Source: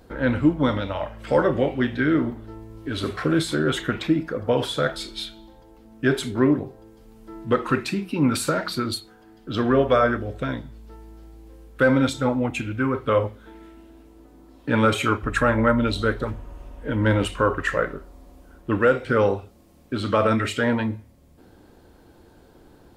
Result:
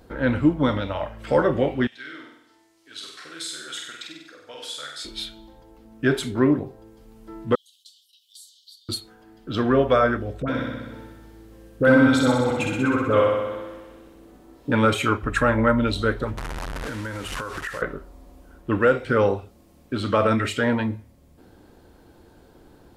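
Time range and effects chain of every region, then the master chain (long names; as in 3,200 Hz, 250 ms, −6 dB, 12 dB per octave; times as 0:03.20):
0:01.87–0:05.05: resonant band-pass 6,400 Hz, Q 1 + flutter between parallel walls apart 8.3 metres, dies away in 0.75 s
0:07.55–0:08.89: downward expander −32 dBFS + Chebyshev high-pass filter 3,000 Hz, order 10 + downward compressor 2 to 1, threshold −56 dBFS
0:10.42–0:14.72: all-pass dispersion highs, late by 60 ms, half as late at 1,100 Hz + flutter between parallel walls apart 10.8 metres, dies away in 1.3 s
0:16.37–0:17.82: linear delta modulator 64 kbit/s, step −25 dBFS + parametric band 1,500 Hz +7 dB 1.2 octaves + downward compressor 16 to 1, threshold −27 dBFS
whole clip: no processing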